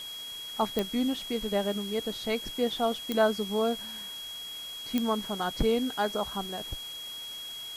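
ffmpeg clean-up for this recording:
ffmpeg -i in.wav -af "adeclick=threshold=4,bandreject=frequency=3300:width=30,afftdn=noise_reduction=30:noise_floor=-40" out.wav

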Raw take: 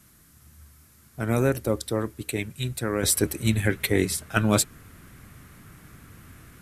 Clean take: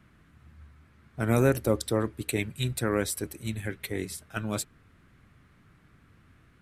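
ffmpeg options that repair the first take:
ffmpeg -i in.wav -af "agate=range=-21dB:threshold=-47dB,asetnsamples=nb_out_samples=441:pad=0,asendcmd='3.03 volume volume -10.5dB',volume=0dB" out.wav

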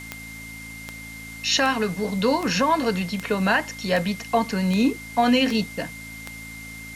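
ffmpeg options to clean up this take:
ffmpeg -i in.wav -af "adeclick=threshold=4,bandreject=frequency=55.2:width_type=h:width=4,bandreject=frequency=110.4:width_type=h:width=4,bandreject=frequency=165.6:width_type=h:width=4,bandreject=frequency=220.8:width_type=h:width=4,bandreject=frequency=276:width_type=h:width=4,bandreject=frequency=2100:width=30,afwtdn=0.0063" out.wav

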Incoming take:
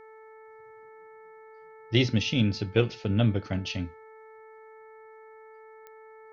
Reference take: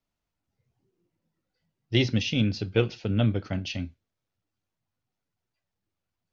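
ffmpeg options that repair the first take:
ffmpeg -i in.wav -af "adeclick=threshold=4,bandreject=frequency=439.2:width_type=h:width=4,bandreject=frequency=878.4:width_type=h:width=4,bandreject=frequency=1317.6:width_type=h:width=4,bandreject=frequency=1756.8:width_type=h:width=4,bandreject=frequency=2196:width_type=h:width=4" out.wav

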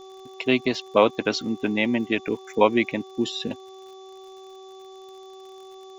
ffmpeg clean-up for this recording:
ffmpeg -i in.wav -af "adeclick=threshold=4,bandreject=frequency=381.2:width_type=h:width=4,bandreject=frequency=762.4:width_type=h:width=4,bandreject=frequency=1143.6:width_type=h:width=4,bandreject=frequency=3500:width=30,afftdn=noise_reduction=25:noise_floor=-44" out.wav

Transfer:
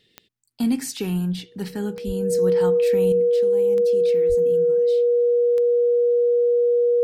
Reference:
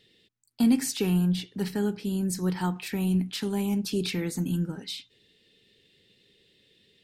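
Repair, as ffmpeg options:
ffmpeg -i in.wav -filter_complex "[0:a]adeclick=threshold=4,bandreject=frequency=480:width=30,asplit=3[link_01][link_02][link_03];[link_01]afade=type=out:start_time=2.06:duration=0.02[link_04];[link_02]highpass=frequency=140:width=0.5412,highpass=frequency=140:width=1.3066,afade=type=in:start_time=2.06:duration=0.02,afade=type=out:start_time=2.18:duration=0.02[link_05];[link_03]afade=type=in:start_time=2.18:duration=0.02[link_06];[link_04][link_05][link_06]amix=inputs=3:normalize=0,asplit=3[link_07][link_08][link_09];[link_07]afade=type=out:start_time=4.28:duration=0.02[link_10];[link_08]highpass=frequency=140:width=0.5412,highpass=frequency=140:width=1.3066,afade=type=in:start_time=4.28:duration=0.02,afade=type=out:start_time=4.4:duration=0.02[link_11];[link_09]afade=type=in:start_time=4.4:duration=0.02[link_12];[link_10][link_11][link_12]amix=inputs=3:normalize=0,asetnsamples=nb_out_samples=441:pad=0,asendcmd='3.12 volume volume 9.5dB',volume=0dB" out.wav

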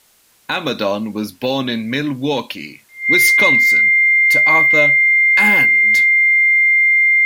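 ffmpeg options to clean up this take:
ffmpeg -i in.wav -af "bandreject=frequency=2100:width=30,agate=range=-21dB:threshold=-36dB" out.wav

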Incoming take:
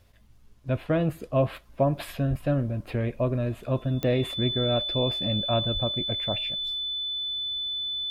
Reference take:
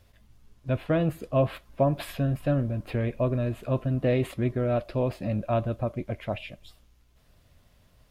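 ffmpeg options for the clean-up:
ffmpeg -i in.wav -filter_complex "[0:a]adeclick=threshold=4,bandreject=frequency=3500:width=30,asplit=3[link_01][link_02][link_03];[link_01]afade=type=out:start_time=2.29:duration=0.02[link_04];[link_02]highpass=frequency=140:width=0.5412,highpass=frequency=140:width=1.3066,afade=type=in:start_time=2.29:duration=0.02,afade=type=out:start_time=2.41:duration=0.02[link_05];[link_03]afade=type=in:start_time=2.41:duration=0.02[link_06];[link_04][link_05][link_06]amix=inputs=3:normalize=0,asplit=3[link_07][link_08][link_09];[link_07]afade=type=out:start_time=5.73:duration=0.02[link_10];[link_08]highpass=frequency=140:width=0.5412,highpass=frequency=140:width=1.3066,afade=type=in:start_time=5.73:duration=0.02,afade=type=out:start_time=5.85:duration=0.02[link_11];[link_09]afade=type=in:start_time=5.85:duration=0.02[link_12];[link_10][link_11][link_12]amix=inputs=3:normalize=0" out.wav

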